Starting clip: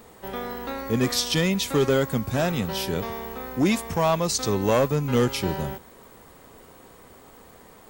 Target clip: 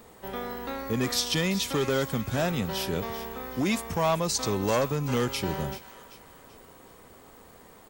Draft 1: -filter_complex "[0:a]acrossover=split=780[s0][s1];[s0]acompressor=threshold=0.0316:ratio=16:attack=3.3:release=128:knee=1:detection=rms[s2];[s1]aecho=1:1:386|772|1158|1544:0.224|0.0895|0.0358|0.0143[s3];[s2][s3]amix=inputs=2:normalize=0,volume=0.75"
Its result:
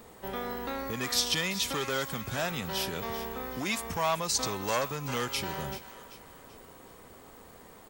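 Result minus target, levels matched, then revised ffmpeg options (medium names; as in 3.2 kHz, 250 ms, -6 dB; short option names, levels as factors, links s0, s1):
compression: peak gain reduction +10 dB
-filter_complex "[0:a]acrossover=split=780[s0][s1];[s0]acompressor=threshold=0.106:ratio=16:attack=3.3:release=128:knee=1:detection=rms[s2];[s1]aecho=1:1:386|772|1158|1544:0.224|0.0895|0.0358|0.0143[s3];[s2][s3]amix=inputs=2:normalize=0,volume=0.75"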